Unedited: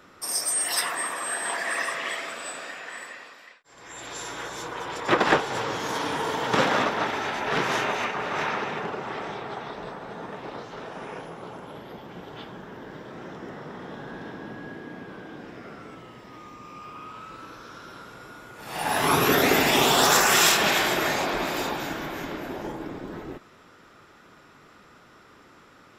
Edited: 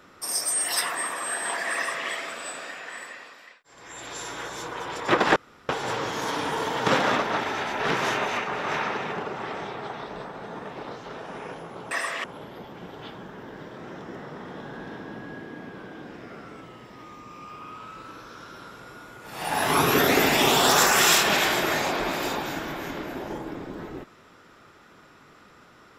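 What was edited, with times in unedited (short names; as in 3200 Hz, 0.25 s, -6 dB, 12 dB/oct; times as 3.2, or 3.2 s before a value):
1.75–2.08 copy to 11.58
5.36 insert room tone 0.33 s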